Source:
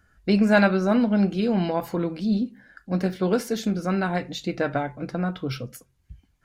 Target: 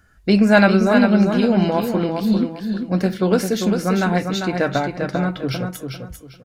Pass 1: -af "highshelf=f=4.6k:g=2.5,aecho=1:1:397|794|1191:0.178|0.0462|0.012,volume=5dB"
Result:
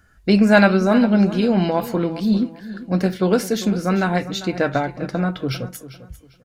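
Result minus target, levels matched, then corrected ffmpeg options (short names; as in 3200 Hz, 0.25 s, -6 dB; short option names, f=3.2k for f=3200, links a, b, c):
echo-to-direct -9 dB
-af "highshelf=f=4.6k:g=2.5,aecho=1:1:397|794|1191:0.501|0.13|0.0339,volume=5dB"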